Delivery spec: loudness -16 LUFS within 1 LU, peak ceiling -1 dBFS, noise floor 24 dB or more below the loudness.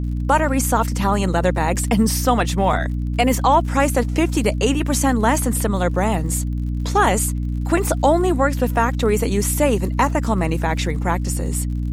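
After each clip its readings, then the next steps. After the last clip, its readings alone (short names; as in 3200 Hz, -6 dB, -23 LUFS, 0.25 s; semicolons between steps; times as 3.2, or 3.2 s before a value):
ticks 49/s; hum 60 Hz; harmonics up to 300 Hz; hum level -20 dBFS; loudness -19.0 LUFS; peak -3.0 dBFS; loudness target -16.0 LUFS
-> de-click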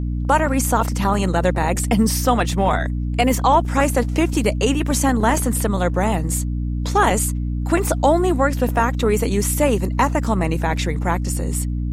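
ticks 0.17/s; hum 60 Hz; harmonics up to 300 Hz; hum level -20 dBFS
-> notches 60/120/180/240/300 Hz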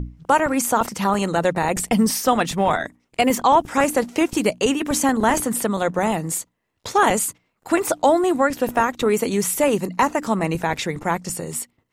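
hum none; loudness -20.5 LUFS; peak -4.5 dBFS; loudness target -16.0 LUFS
-> gain +4.5 dB; limiter -1 dBFS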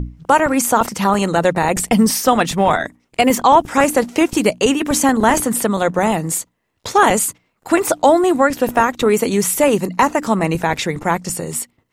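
loudness -16.0 LUFS; peak -1.0 dBFS; noise floor -67 dBFS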